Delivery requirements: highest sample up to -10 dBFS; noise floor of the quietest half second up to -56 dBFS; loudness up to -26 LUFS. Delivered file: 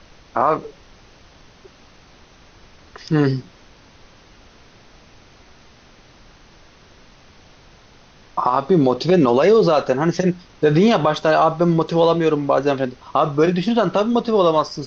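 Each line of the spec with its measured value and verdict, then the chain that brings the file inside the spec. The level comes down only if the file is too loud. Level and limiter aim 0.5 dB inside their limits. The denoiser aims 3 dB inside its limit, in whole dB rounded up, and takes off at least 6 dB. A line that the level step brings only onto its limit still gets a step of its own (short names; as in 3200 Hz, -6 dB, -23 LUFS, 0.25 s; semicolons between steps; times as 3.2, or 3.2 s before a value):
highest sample -5.5 dBFS: fail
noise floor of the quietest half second -48 dBFS: fail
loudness -17.5 LUFS: fail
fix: gain -9 dB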